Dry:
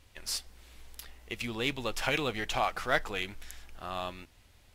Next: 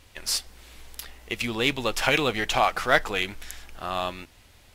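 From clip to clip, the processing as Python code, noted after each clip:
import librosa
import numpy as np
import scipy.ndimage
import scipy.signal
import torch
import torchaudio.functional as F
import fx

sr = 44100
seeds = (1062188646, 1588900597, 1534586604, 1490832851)

y = fx.low_shelf(x, sr, hz=150.0, db=-4.0)
y = y * librosa.db_to_amplitude(8.0)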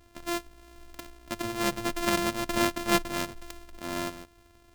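y = np.r_[np.sort(x[:len(x) // 128 * 128].reshape(-1, 128), axis=1).ravel(), x[len(x) // 128 * 128:]]
y = y * librosa.db_to_amplitude(-4.0)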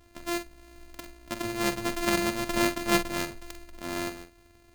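y = fx.doubler(x, sr, ms=46.0, db=-9.5)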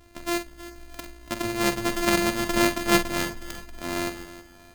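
y = fx.echo_feedback(x, sr, ms=317, feedback_pct=40, wet_db=-15.5)
y = y * librosa.db_to_amplitude(4.0)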